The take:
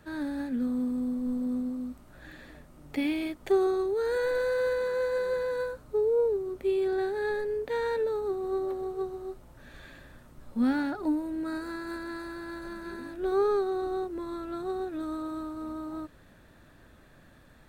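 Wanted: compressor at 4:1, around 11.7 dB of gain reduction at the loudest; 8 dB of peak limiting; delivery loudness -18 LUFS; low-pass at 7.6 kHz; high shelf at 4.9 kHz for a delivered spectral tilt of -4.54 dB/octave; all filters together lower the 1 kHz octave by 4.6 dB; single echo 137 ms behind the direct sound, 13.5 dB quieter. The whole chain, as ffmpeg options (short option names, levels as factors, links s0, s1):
-af "lowpass=7600,equalizer=f=1000:t=o:g=-6.5,highshelf=f=4900:g=5.5,acompressor=threshold=0.0158:ratio=4,alimiter=level_in=2.82:limit=0.0631:level=0:latency=1,volume=0.355,aecho=1:1:137:0.211,volume=11.9"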